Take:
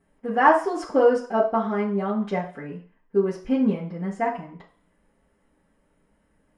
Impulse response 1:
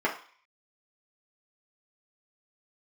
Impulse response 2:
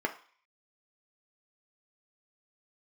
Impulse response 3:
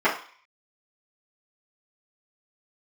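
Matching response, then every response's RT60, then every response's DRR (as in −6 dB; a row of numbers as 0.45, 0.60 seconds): 3; 0.45, 0.45, 0.45 seconds; −4.0, 3.0, −11.5 decibels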